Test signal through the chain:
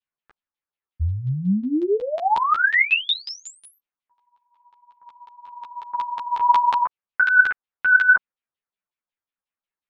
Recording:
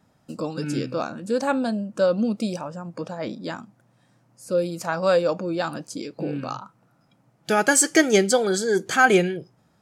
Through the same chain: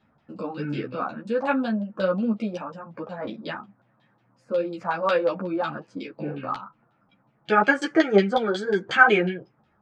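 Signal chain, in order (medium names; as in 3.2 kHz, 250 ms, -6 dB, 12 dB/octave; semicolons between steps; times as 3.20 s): LFO low-pass saw down 5.5 Hz 900–3600 Hz; three-phase chorus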